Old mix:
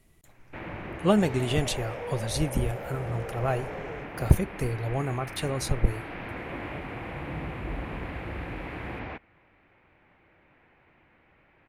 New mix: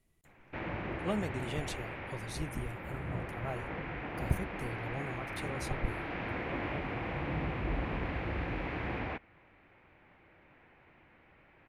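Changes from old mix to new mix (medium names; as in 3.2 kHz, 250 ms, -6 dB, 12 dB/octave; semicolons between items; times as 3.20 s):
speech -12.0 dB; second sound: muted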